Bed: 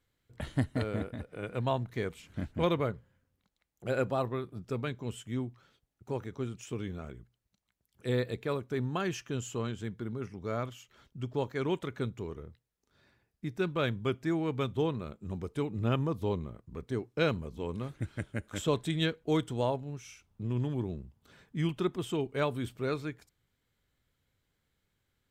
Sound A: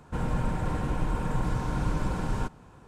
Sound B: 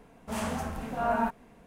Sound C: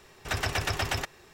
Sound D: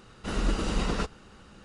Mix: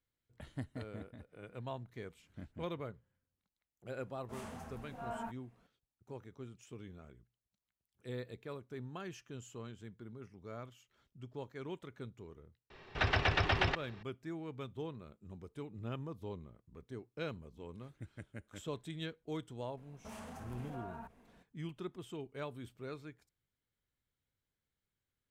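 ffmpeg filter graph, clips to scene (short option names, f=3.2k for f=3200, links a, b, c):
-filter_complex "[2:a]asplit=2[a][b];[0:a]volume=-12.5dB[c];[3:a]lowpass=f=4.1k:w=0.5412,lowpass=f=4.1k:w=1.3066[d];[b]acompressor=threshold=-35dB:ratio=6:attack=3.2:release=140:knee=1:detection=peak[e];[a]atrim=end=1.66,asetpts=PTS-STARTPTS,volume=-15dB,afade=t=in:d=0.004:c=hsin,afade=t=out:st=1.656:d=0.004:c=hsin,adelay=176841S[f];[d]atrim=end=1.33,asetpts=PTS-STARTPTS,volume=-1dB,afade=t=in:d=0.004:c=hsin,afade=t=out:st=1.326:d=0.004:c=hsin,adelay=12700[g];[e]atrim=end=1.66,asetpts=PTS-STARTPTS,volume=-9.5dB,afade=t=in:d=0.004:c=hsin,afade=t=out:st=1.656:d=0.004:c=hsin,adelay=19770[h];[c][f][g][h]amix=inputs=4:normalize=0"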